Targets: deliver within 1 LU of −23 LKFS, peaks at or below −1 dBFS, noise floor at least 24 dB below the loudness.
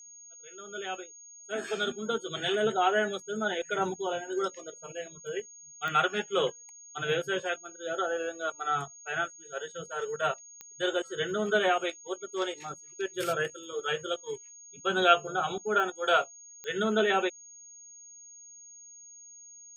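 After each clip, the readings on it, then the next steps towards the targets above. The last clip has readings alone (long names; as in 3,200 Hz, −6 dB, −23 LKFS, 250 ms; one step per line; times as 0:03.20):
number of clicks 4; interfering tone 6,600 Hz; level of the tone −48 dBFS; integrated loudness −30.5 LKFS; sample peak −9.5 dBFS; target loudness −23.0 LKFS
→ click removal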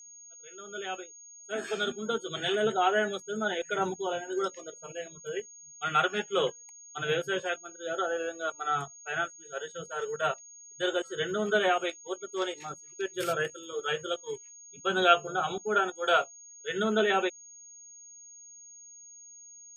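number of clicks 0; interfering tone 6,600 Hz; level of the tone −48 dBFS
→ notch filter 6,600 Hz, Q 30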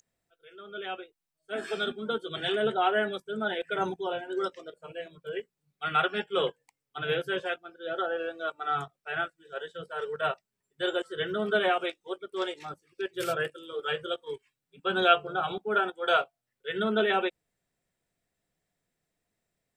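interfering tone none found; integrated loudness −30.5 LKFS; sample peak −9.5 dBFS; target loudness −23.0 LKFS
→ level +7.5 dB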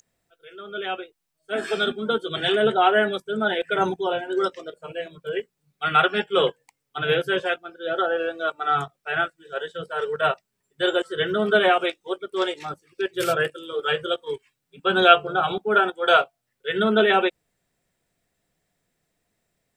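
integrated loudness −23.0 LKFS; sample peak −2.0 dBFS; background noise floor −78 dBFS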